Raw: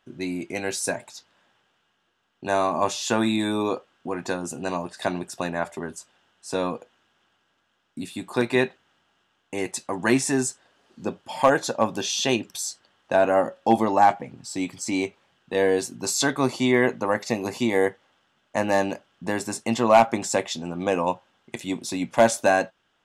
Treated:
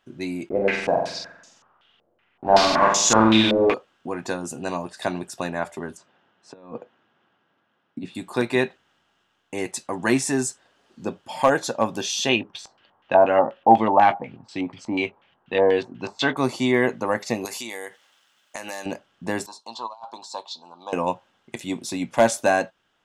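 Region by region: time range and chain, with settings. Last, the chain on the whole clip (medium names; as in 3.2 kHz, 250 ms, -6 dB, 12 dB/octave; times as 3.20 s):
0.49–3.74 s: block-companded coder 3-bit + flutter echo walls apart 7.8 m, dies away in 0.83 s + step-sequenced low-pass 5.3 Hz 560–6700 Hz
5.97–8.15 s: high-pass 110 Hz 24 dB/octave + compressor with a negative ratio -33 dBFS, ratio -0.5 + tape spacing loss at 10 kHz 29 dB
12.29–16.37 s: LFO low-pass square 4.1 Hz 930–2900 Hz + doubling 19 ms -14 dB
17.45–18.86 s: tilt EQ +4 dB/octave + compression 8:1, threshold -29 dBFS
19.46–20.93 s: two resonant band-passes 2 kHz, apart 2.1 oct + compressor with a negative ratio -32 dBFS, ratio -0.5
whole clip: none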